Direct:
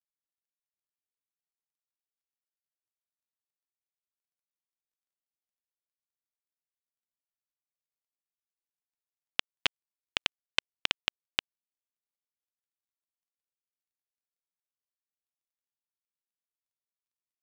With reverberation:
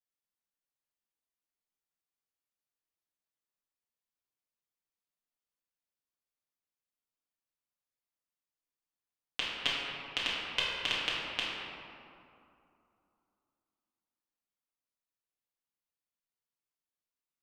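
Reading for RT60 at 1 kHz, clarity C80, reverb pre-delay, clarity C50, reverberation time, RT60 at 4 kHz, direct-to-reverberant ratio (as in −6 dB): 2.7 s, −0.5 dB, 4 ms, −2.0 dB, 2.7 s, 1.3 s, −8.0 dB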